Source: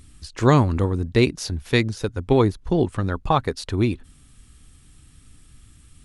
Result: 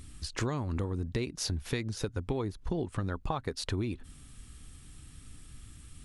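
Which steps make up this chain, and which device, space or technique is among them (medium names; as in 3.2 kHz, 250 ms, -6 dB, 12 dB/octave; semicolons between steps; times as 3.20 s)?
serial compression, leveller first (compression 3:1, threshold -20 dBFS, peak gain reduction 7.5 dB; compression 5:1, threshold -30 dBFS, peak gain reduction 12 dB)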